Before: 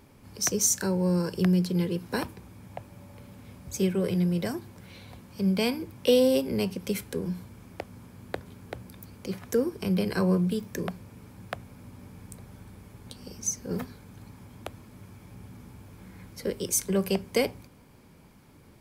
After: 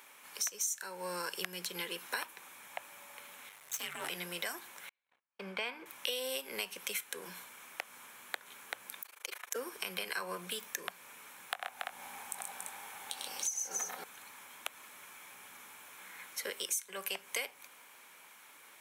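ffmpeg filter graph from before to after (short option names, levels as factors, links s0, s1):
-filter_complex "[0:a]asettb=1/sr,asplit=3[s0][s1][s2];[s0]atrim=end=3.494[s3];[s1]atrim=start=3.49:end=4.1,asetpts=PTS-STARTPTS,afade=t=in:d=0.004:c=qsin,afade=t=out:st=0.606:d=0.004:c=qsin,bandreject=f=370:w=12,aeval=exprs='max(val(0),0)':c=same,afreqshift=-150[s4];[s2]atrim=start=4.096[s5];[s3][s4]acrossfade=d=0.004:c1=hsin:c2=qsin[s6];[s6][s5]acrossfade=d=0.004:c1=qsin:c2=hsin,asettb=1/sr,asplit=3[s7][s8][s9];[s7]atrim=end=4.894[s10];[s8]atrim=start=4.89:end=5.86,asetpts=PTS-STARTPTS,afade=t=in:d=0.004:c=qsin,afade=t=out:st=0.966:d=0.004:c=qsin,lowpass=1900,aemphasis=mode=production:type=50fm,agate=range=0.00794:threshold=0.00708:ratio=16:release=100:detection=peak[s11];[s9]atrim=start=5.856[s12];[s10][s11]acrossfade=d=0.004:c1=hsin:c2=qsin[s13];[s13][s12]acrossfade=d=0.004:c1=qsin:c2=hsin,asettb=1/sr,asplit=3[s14][s15][s16];[s14]atrim=end=9.024[s17];[s15]atrim=start=9.02:end=9.56,asetpts=PTS-STARTPTS,afade=t=in:d=0.004:c=qsin,afade=t=out:st=0.536:d=0.004:c=qsin,highpass=f=360:w=0.5412,highpass=f=360:w=1.3066,tremolo=f=26:d=0.974[s18];[s16]atrim=start=9.556[s19];[s17][s18]acrossfade=d=0.004:c1=hsin:c2=qsin[s20];[s20][s19]acrossfade=d=0.004:c1=qsin:c2=hsin,asettb=1/sr,asplit=3[s21][s22][s23];[s21]atrim=end=11.504[s24];[s22]atrim=start=11.5:end=14.04,asetpts=PTS-STARTPTS,afade=t=in:d=0.004:c=qsin,afade=t=out:st=2.536:d=0.004:c=qsin,equalizer=f=790:w=3.9:g=12,asplit=2[s25][s26];[s26]adelay=22,volume=0.282[s27];[s25][s27]amix=inputs=2:normalize=0,atrim=end_sample=112014,aecho=1:1:66|98|131|283|341|875:0.112|0.531|0.596|0.473|0.447|0.1,atrim=end_sample=112014[s28];[s23]atrim=start=14.036[s29];[s24][s28]acrossfade=d=0.004:c1=hsin:c2=qsin[s30];[s30][s29]acrossfade=d=0.004:c1=qsin:c2=hsin,highpass=1300,equalizer=f=4800:w=4.9:g=-12,acompressor=threshold=0.00631:ratio=5,volume=2.82"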